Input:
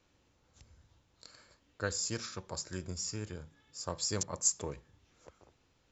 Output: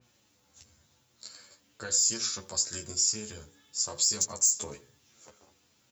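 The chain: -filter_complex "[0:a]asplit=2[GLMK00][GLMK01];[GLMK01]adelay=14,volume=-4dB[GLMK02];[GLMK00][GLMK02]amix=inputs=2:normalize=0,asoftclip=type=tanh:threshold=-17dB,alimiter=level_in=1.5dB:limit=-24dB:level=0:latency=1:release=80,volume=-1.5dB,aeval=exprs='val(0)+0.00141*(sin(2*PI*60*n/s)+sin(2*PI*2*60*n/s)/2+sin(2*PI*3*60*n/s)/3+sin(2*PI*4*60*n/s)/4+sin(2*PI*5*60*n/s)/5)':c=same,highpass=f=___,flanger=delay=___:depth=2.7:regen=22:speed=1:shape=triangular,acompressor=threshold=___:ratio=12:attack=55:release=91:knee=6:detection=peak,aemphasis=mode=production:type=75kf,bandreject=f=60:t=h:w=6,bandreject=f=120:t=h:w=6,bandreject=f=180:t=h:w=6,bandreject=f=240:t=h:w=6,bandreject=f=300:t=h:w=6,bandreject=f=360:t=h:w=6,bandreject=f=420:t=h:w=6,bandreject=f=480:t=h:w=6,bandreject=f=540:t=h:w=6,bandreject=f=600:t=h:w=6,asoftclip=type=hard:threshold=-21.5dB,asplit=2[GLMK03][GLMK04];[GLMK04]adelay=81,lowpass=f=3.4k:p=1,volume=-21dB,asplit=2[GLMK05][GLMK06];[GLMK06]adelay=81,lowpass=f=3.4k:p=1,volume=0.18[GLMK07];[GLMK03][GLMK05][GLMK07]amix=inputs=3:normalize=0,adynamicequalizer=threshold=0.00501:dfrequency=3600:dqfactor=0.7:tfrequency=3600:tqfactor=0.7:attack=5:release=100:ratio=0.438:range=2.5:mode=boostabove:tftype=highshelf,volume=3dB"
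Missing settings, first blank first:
100, 7.9, -42dB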